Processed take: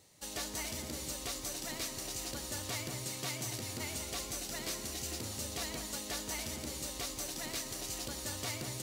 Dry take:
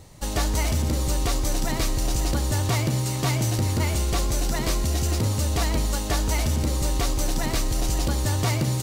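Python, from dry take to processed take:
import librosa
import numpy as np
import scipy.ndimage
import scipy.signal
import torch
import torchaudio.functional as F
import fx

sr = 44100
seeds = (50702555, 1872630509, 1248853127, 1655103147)

y = fx.highpass(x, sr, hz=610.0, slope=6)
y = fx.peak_eq(y, sr, hz=1000.0, db=-7.0, octaves=1.6)
y = fx.echo_alternate(y, sr, ms=187, hz=2000.0, feedback_pct=60, wet_db=-6.5)
y = y * 10.0 ** (-8.0 / 20.0)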